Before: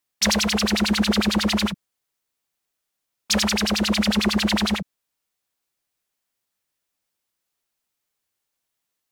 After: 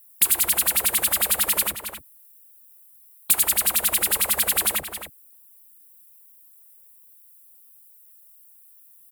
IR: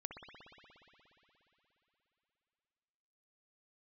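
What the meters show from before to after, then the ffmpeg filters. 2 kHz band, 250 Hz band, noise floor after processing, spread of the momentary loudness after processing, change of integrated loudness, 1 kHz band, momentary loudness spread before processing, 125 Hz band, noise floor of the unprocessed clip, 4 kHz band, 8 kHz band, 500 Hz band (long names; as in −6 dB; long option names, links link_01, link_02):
−3.5 dB, −22.5 dB, −52 dBFS, 11 LU, +1.5 dB, −3.5 dB, 6 LU, −17.5 dB, −81 dBFS, −5.5 dB, +7.0 dB, −8.0 dB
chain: -filter_complex "[0:a]afftfilt=real='re*lt(hypot(re,im),0.2)':imag='im*lt(hypot(re,im),0.2)':win_size=1024:overlap=0.75,asplit=2[link_01][link_02];[link_02]adelay=268.2,volume=-13dB,highshelf=frequency=4000:gain=-6.04[link_03];[link_01][link_03]amix=inputs=2:normalize=0,aexciter=amount=11.4:drive=7.4:freq=8500,acompressor=threshold=-25dB:ratio=2.5,volume=4.5dB"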